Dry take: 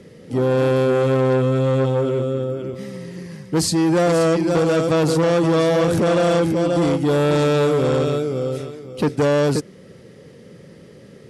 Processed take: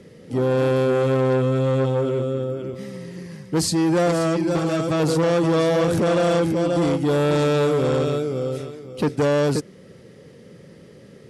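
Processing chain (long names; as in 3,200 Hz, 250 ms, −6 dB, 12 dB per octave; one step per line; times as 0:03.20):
0:04.11–0:05.00: notch comb filter 240 Hz
level −2 dB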